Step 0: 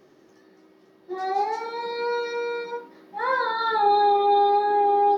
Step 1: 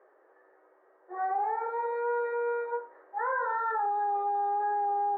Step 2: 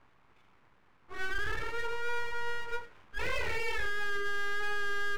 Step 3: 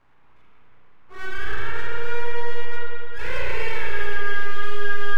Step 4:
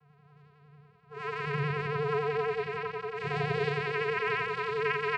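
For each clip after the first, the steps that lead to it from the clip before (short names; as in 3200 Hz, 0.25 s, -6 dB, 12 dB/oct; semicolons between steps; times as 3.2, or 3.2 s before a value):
limiter -22 dBFS, peak gain reduction 11 dB; Chebyshev band-pass 470–1700 Hz, order 3
full-wave rectifier
spring tank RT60 2.6 s, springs 34/50 ms, chirp 45 ms, DRR -5 dB
vocoder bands 8, square 146 Hz; vibrato 11 Hz 67 cents; on a send: echo 0.901 s -8.5 dB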